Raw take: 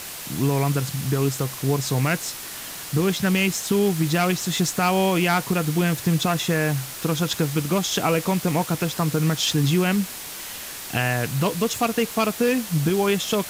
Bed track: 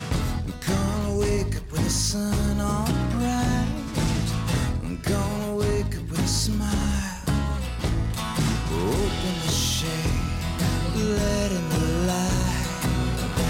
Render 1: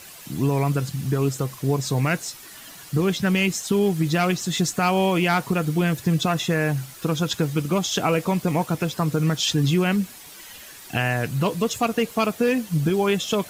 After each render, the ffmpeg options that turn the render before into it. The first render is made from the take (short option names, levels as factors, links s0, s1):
-af "afftdn=nr=10:nf=-35"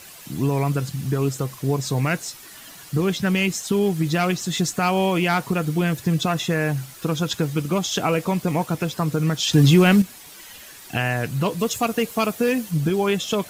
-filter_complex "[0:a]asettb=1/sr,asplit=3[s0][s1][s2];[s0]atrim=end=9.534[s3];[s1]atrim=start=9.53:end=10.02,asetpts=PTS-STARTPTS,afade=t=in:d=0.004:c=qsin,afade=t=out:st=0.486:d=0.004:c=qsin,acontrast=81[s4];[s2]atrim=start=10.016[s5];[s3][s4]acrossfade=d=0.004:c1=hsin:c2=qsin[s6];[s6][s5]acrossfade=d=0.004:c1=qsin:c2=hsin,asettb=1/sr,asplit=3[s7][s8][s9];[s7]atrim=end=11.594[s10];[s8]atrim=start=11.59:end=12.71,asetpts=PTS-STARTPTS,afade=t=in:d=0.004:c=qsin,afade=t=out:st=1.116:d=0.004:c=qsin,highshelf=f=7600:g=6[s11];[s9]atrim=start=12.706[s12];[s10][s11]acrossfade=d=0.004:c1=hsin:c2=qsin[s13];[s13][s12]acrossfade=d=0.004:c1=qsin:c2=hsin"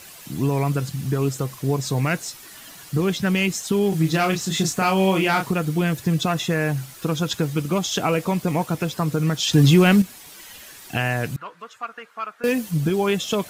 -filter_complex "[0:a]asettb=1/sr,asplit=3[s0][s1][s2];[s0]atrim=end=3.894[s3];[s1]atrim=start=3.89:end=5.51,asetpts=PTS-STARTPTS,afade=t=in:d=0.004:c=qsin,afade=t=out:st=1.616:d=0.004:c=qsin,asplit=2[s4][s5];[s5]adelay=31,volume=0.562[s6];[s4][s6]amix=inputs=2:normalize=0,atrim=end_sample=71442[s7];[s2]atrim=start=5.506[s8];[s3][s7]acrossfade=d=0.004:c1=hsin:c2=qsin[s9];[s9][s8]acrossfade=d=0.004:c1=qsin:c2=hsin,asettb=1/sr,asplit=3[s10][s11][s12];[s10]atrim=end=11.364[s13];[s11]atrim=start=11.36:end=12.44,asetpts=PTS-STARTPTS,afade=t=in:d=0.004:c=qsin,afade=t=out:st=1.076:d=0.004:c=qsin,bandpass=f=1400:t=q:w=3.4[s14];[s12]atrim=start=12.436[s15];[s13][s14]acrossfade=d=0.004:c1=hsin:c2=qsin[s16];[s16][s15]acrossfade=d=0.004:c1=qsin:c2=hsin"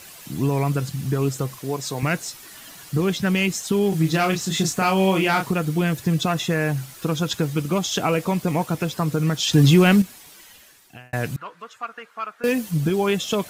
-filter_complex "[0:a]asettb=1/sr,asplit=3[s0][s1][s2];[s0]atrim=end=1.594[s3];[s1]atrim=start=1.59:end=2.03,asetpts=PTS-STARTPTS,afade=t=in:d=0.004:c=qsin,afade=t=out:st=0.436:d=0.004:c=qsin,highpass=f=370:p=1[s4];[s2]atrim=start=2.026[s5];[s3][s4]acrossfade=d=0.004:c1=hsin:c2=qsin[s6];[s6][s5]acrossfade=d=0.004:c1=qsin:c2=hsin,asplit=2[s7][s8];[s7]atrim=end=11.13,asetpts=PTS-STARTPTS,afade=t=out:st=9.94:d=1.19[s9];[s8]atrim=start=11.13,asetpts=PTS-STARTPTS,afade=t=in:d=0.004:c=hsin[s10];[s9][s10]concat=n=2:v=0:a=1"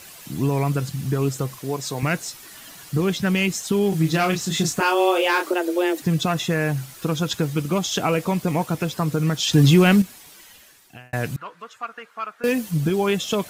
-filter_complex "[0:a]asettb=1/sr,asplit=3[s0][s1][s2];[s0]atrim=end=4.804[s3];[s1]atrim=start=4.8:end=6.02,asetpts=PTS-STARTPTS,afade=t=in:d=0.004:c=qsin,afade=t=out:st=1.216:d=0.004:c=qsin,afreqshift=180[s4];[s2]atrim=start=6.016[s5];[s3][s4]acrossfade=d=0.004:c1=hsin:c2=qsin[s6];[s6][s5]acrossfade=d=0.004:c1=qsin:c2=hsin"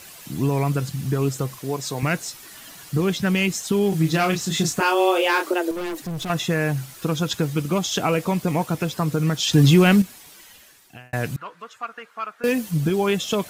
-filter_complex "[0:a]asettb=1/sr,asplit=3[s0][s1][s2];[s0]atrim=end=5.714[s3];[s1]atrim=start=5.71:end=6.3,asetpts=PTS-STARTPTS,afade=t=in:d=0.004:c=qsin,afade=t=out:st=0.586:d=0.004:c=qsin,aeval=exprs='(tanh(20*val(0)+0.3)-tanh(0.3))/20':c=same[s4];[s2]atrim=start=6.296[s5];[s3][s4]acrossfade=d=0.004:c1=hsin:c2=qsin[s6];[s6][s5]acrossfade=d=0.004:c1=qsin:c2=hsin"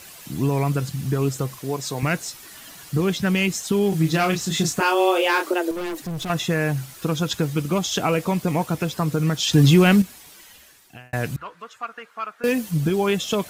-af "equalizer=f=67:t=o:w=0.21:g=7"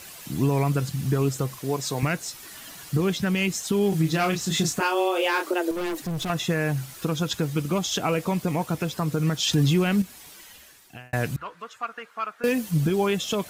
-af "alimiter=limit=0.211:level=0:latency=1:release=324"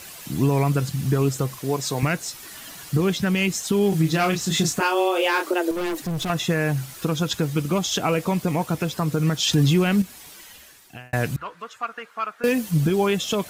-af "volume=1.33"